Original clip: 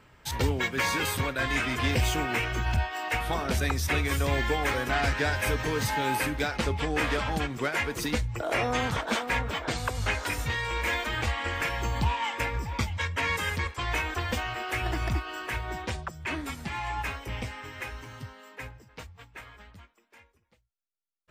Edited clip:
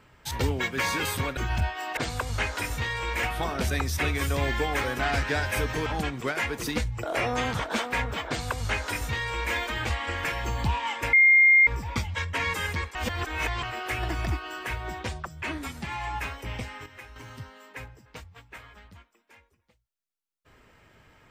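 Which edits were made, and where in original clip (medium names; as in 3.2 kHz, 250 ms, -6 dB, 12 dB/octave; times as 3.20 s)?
1.37–2.53 s: delete
5.76–7.23 s: delete
9.65–10.91 s: copy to 3.13 s
12.50 s: add tone 2.12 kHz -13.5 dBFS 0.54 s
13.78–14.46 s: reverse
17.69–17.99 s: gain -8 dB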